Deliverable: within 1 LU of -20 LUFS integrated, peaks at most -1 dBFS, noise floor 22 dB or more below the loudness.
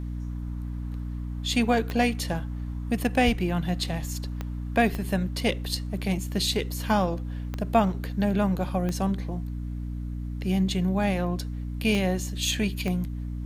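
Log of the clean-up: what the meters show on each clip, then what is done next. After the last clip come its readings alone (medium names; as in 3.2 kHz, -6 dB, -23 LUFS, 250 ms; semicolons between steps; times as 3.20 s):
clicks found 7; hum 60 Hz; highest harmonic 300 Hz; hum level -30 dBFS; loudness -27.5 LUFS; peak level -8.5 dBFS; loudness target -20.0 LUFS
-> de-click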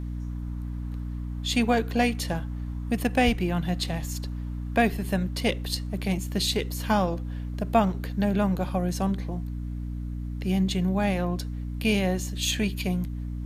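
clicks found 0; hum 60 Hz; highest harmonic 300 Hz; hum level -30 dBFS
-> de-hum 60 Hz, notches 5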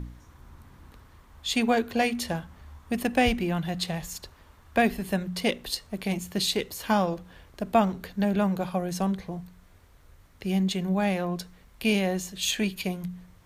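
hum not found; loudness -27.5 LUFS; peak level -9.0 dBFS; loudness target -20.0 LUFS
-> trim +7.5 dB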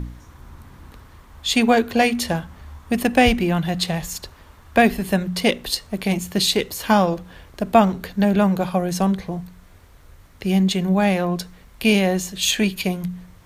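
loudness -20.0 LUFS; peak level -1.5 dBFS; noise floor -48 dBFS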